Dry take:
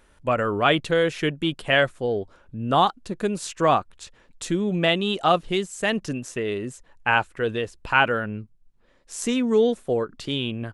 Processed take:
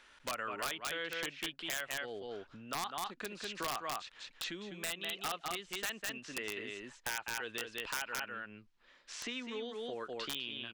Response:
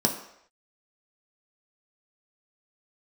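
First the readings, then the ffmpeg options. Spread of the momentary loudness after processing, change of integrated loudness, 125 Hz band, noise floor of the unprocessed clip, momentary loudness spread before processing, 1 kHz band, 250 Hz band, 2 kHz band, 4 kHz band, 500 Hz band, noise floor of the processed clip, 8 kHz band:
6 LU, −16.0 dB, −26.0 dB, −58 dBFS, 10 LU, −17.5 dB, −22.0 dB, −14.0 dB, −10.5 dB, −21.0 dB, −65 dBFS, −5.5 dB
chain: -filter_complex "[0:a]acrossover=split=4400[link_01][link_02];[link_02]acompressor=threshold=-51dB:ratio=4:attack=1:release=60[link_03];[link_01][link_03]amix=inputs=2:normalize=0,equalizer=frequency=490:width=0.57:gain=-15,aecho=1:1:200:0.501,acompressor=threshold=-40dB:ratio=12,acrossover=split=300 6200:gain=0.0631 1 0.0794[link_04][link_05][link_06];[link_04][link_05][link_06]amix=inputs=3:normalize=0,aeval=exprs='(mod(50.1*val(0)+1,2)-1)/50.1':channel_layout=same,volume=6.5dB"

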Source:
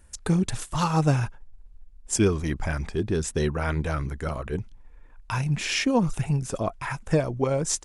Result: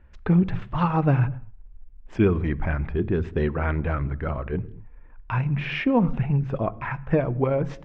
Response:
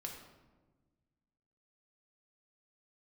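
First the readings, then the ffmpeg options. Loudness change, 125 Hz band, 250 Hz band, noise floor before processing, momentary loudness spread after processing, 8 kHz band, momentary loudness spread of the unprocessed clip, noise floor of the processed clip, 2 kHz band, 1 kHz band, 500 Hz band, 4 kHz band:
+1.5 dB, +2.5 dB, +2.5 dB, −50 dBFS, 8 LU, below −30 dB, 9 LU, −47 dBFS, 0.0 dB, +1.0 dB, +1.5 dB, −9.0 dB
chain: -filter_complex "[0:a]lowpass=frequency=2600:width=0.5412,lowpass=frequency=2600:width=1.3066,asplit=2[link_01][link_02];[link_02]equalizer=frequency=94:width=0.38:gain=12.5[link_03];[1:a]atrim=start_sample=2205,afade=type=out:start_time=0.3:duration=0.01,atrim=end_sample=13671[link_04];[link_03][link_04]afir=irnorm=-1:irlink=0,volume=-13.5dB[link_05];[link_01][link_05]amix=inputs=2:normalize=0"

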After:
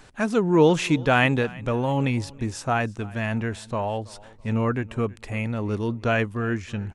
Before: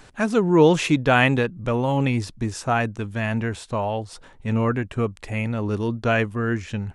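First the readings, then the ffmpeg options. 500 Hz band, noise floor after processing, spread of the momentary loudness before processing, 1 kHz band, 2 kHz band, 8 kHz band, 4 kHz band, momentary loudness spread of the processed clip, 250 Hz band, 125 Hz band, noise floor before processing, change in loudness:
−2.0 dB, −48 dBFS, 11 LU, −2.0 dB, −2.0 dB, −2.0 dB, −2.0 dB, 11 LU, −2.0 dB, −2.0 dB, −49 dBFS, −2.0 dB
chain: -af "aecho=1:1:328|656:0.0794|0.023,volume=-2dB"

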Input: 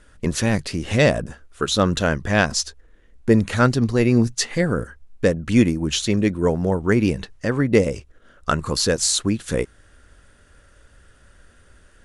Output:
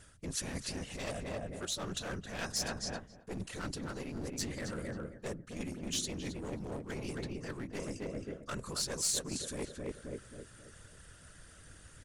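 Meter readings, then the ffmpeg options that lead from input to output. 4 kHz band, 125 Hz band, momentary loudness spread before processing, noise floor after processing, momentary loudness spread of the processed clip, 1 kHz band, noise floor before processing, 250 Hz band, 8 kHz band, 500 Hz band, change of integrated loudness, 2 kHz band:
−13.5 dB, −21.0 dB, 9 LU, −57 dBFS, 19 LU, −18.5 dB, −54 dBFS, −21.0 dB, −11.0 dB, −20.5 dB, −18.5 dB, −19.0 dB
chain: -filter_complex "[0:a]afftfilt=real='hypot(re,im)*cos(2*PI*random(0))':imag='hypot(re,im)*sin(2*PI*random(1))':win_size=512:overlap=0.75,asplit=2[link_01][link_02];[link_02]adelay=268,lowpass=frequency=1500:poles=1,volume=-4.5dB,asplit=2[link_03][link_04];[link_04]adelay=268,lowpass=frequency=1500:poles=1,volume=0.37,asplit=2[link_05][link_06];[link_06]adelay=268,lowpass=frequency=1500:poles=1,volume=0.37,asplit=2[link_07][link_08];[link_08]adelay=268,lowpass=frequency=1500:poles=1,volume=0.37,asplit=2[link_09][link_10];[link_10]adelay=268,lowpass=frequency=1500:poles=1,volume=0.37[link_11];[link_01][link_03][link_05][link_07][link_09][link_11]amix=inputs=6:normalize=0,aeval=exprs='clip(val(0),-1,0.0562)':channel_layout=same,areverse,acompressor=threshold=-37dB:ratio=16,areverse,equalizer=frequency=9000:width=0.37:gain=11"

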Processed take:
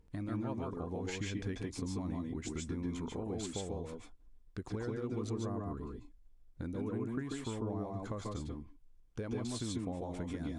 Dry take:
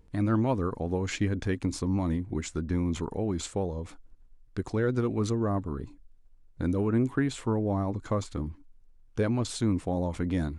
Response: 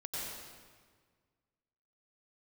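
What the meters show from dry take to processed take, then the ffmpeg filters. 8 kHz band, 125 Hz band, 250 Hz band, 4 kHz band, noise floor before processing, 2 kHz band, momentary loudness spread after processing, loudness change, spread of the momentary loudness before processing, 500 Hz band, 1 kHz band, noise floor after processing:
−6.0 dB, −10.5 dB, −9.5 dB, −6.0 dB, −56 dBFS, −10.0 dB, 8 LU, −10.0 dB, 10 LU, −10.0 dB, −10.0 dB, −61 dBFS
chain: -filter_complex "[0:a]acompressor=threshold=-31dB:ratio=6[link_01];[1:a]atrim=start_sample=2205,atrim=end_sample=4410,asetrate=28224,aresample=44100[link_02];[link_01][link_02]afir=irnorm=-1:irlink=0,volume=-2.5dB"

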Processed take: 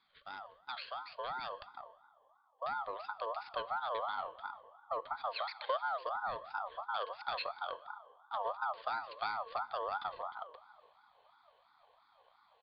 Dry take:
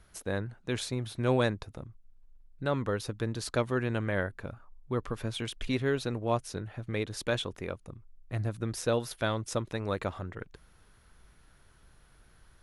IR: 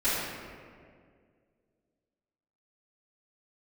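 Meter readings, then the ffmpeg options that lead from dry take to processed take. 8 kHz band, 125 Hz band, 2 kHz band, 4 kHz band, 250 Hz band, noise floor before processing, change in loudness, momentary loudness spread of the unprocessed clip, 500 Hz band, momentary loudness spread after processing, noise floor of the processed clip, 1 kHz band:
below −35 dB, below −35 dB, −6.0 dB, −6.5 dB, below −30 dB, −61 dBFS, −7.0 dB, 14 LU, −10.5 dB, 11 LU, −70 dBFS, +3.0 dB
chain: -filter_complex "[0:a]asplit=3[link_01][link_02][link_03];[link_01]bandpass=frequency=300:width_type=q:width=8,volume=0dB[link_04];[link_02]bandpass=frequency=870:width_type=q:width=8,volume=-6dB[link_05];[link_03]bandpass=frequency=2240:width_type=q:width=8,volume=-9dB[link_06];[link_04][link_05][link_06]amix=inputs=3:normalize=0,acompressor=threshold=-44dB:ratio=6,bandreject=frequency=153.2:width_type=h:width=4,bandreject=frequency=306.4:width_type=h:width=4,bandreject=frequency=459.6:width_type=h:width=4,bandreject=frequency=612.8:width_type=h:width=4,bandreject=frequency=766:width_type=h:width=4,bandreject=frequency=919.2:width_type=h:width=4,bandreject=frequency=1072.4:width_type=h:width=4,bandreject=frequency=1225.6:width_type=h:width=4,bandreject=frequency=1378.8:width_type=h:width=4,bandreject=frequency=1532:width_type=h:width=4,bandreject=frequency=1685.2:width_type=h:width=4,bandreject=frequency=1838.4:width_type=h:width=4,bandreject=frequency=1991.6:width_type=h:width=4,bandreject=frequency=2144.8:width_type=h:width=4,bandreject=frequency=2298:width_type=h:width=4,bandreject=frequency=2451.2:width_type=h:width=4,aexciter=amount=8.4:drive=6.4:freq=2400,asubboost=boost=9:cutoff=250,asplit=2[link_07][link_08];[1:a]atrim=start_sample=2205[link_09];[link_08][link_09]afir=irnorm=-1:irlink=0,volume=-27dB[link_10];[link_07][link_10]amix=inputs=2:normalize=0,aresample=8000,aresample=44100,aeval=exprs='val(0)*sin(2*PI*970*n/s+970*0.2/2.9*sin(2*PI*2.9*n/s))':channel_layout=same,volume=3dB"

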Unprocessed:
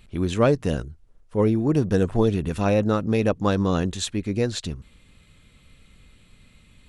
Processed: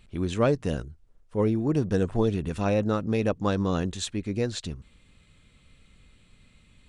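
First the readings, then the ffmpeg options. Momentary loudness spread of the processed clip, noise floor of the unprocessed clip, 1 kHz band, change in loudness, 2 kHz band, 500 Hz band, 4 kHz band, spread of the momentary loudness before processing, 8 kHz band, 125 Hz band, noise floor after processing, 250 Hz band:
10 LU, −56 dBFS, −4.0 dB, −4.0 dB, −4.0 dB, −4.0 dB, −4.0 dB, 10 LU, −4.0 dB, −4.0 dB, −60 dBFS, −4.0 dB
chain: -af "aresample=22050,aresample=44100,volume=-4dB"

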